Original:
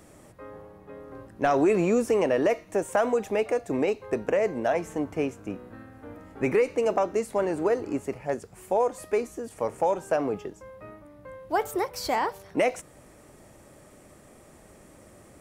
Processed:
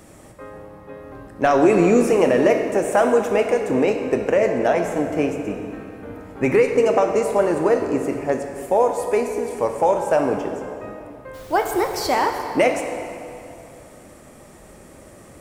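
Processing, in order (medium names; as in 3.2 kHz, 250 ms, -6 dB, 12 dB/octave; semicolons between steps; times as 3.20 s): 11.33–12.04 s: added noise pink -51 dBFS; reverberation RT60 2.6 s, pre-delay 3 ms, DRR 4 dB; trim +6 dB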